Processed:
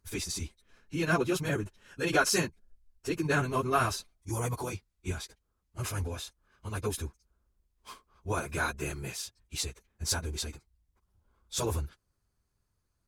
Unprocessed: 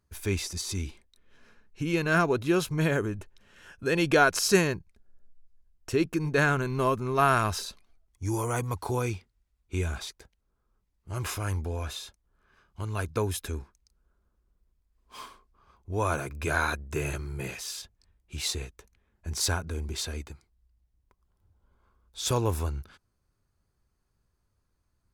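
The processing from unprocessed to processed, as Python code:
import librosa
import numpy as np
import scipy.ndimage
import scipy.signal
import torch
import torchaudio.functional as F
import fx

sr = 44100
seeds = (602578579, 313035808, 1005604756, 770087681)

y = fx.stretch_vocoder_free(x, sr, factor=0.52)
y = fx.peak_eq(y, sr, hz=9000.0, db=4.0, octaves=2.0)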